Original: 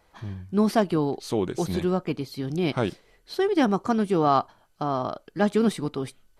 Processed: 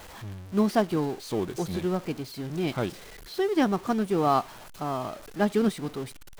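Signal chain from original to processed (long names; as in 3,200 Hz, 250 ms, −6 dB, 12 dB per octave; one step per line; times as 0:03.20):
converter with a step at zero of −30 dBFS
expander for the loud parts 1.5 to 1, over −32 dBFS
level −2 dB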